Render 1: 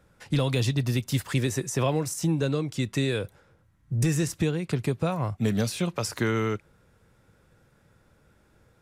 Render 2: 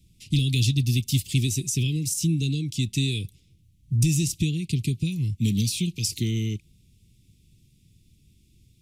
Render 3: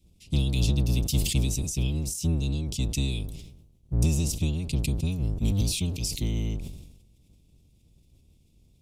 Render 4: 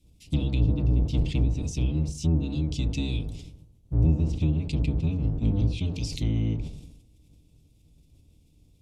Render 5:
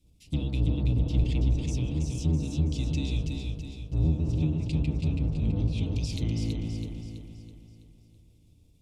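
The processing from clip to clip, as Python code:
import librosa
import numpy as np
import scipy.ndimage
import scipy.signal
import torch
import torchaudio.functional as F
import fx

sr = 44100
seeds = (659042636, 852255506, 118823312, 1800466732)

y1 = scipy.signal.sosfilt(scipy.signal.cheby2(4, 40, [570.0, 1700.0], 'bandstop', fs=sr, output='sos'), x)
y1 = fx.peak_eq(y1, sr, hz=430.0, db=-10.0, octaves=1.9)
y1 = y1 * librosa.db_to_amplitude(6.0)
y2 = fx.octave_divider(y1, sr, octaves=1, level_db=3.0)
y2 = fx.sustainer(y2, sr, db_per_s=57.0)
y2 = y2 * librosa.db_to_amplitude(-6.5)
y3 = fx.rev_fdn(y2, sr, rt60_s=0.44, lf_ratio=1.25, hf_ratio=0.25, size_ms=20.0, drr_db=7.0)
y3 = fx.env_lowpass_down(y3, sr, base_hz=1000.0, full_db=-17.5)
y4 = fx.echo_feedback(y3, sr, ms=328, feedback_pct=47, wet_db=-4)
y4 = y4 * librosa.db_to_amplitude(-3.5)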